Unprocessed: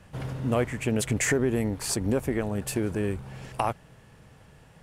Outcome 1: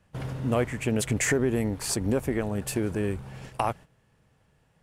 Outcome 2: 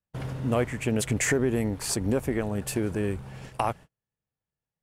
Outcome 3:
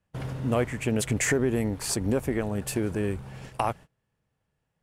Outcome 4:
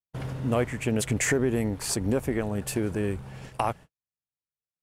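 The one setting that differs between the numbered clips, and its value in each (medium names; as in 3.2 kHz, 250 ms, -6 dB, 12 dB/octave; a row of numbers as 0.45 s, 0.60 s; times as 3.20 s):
gate, range: -12 dB, -39 dB, -25 dB, -55 dB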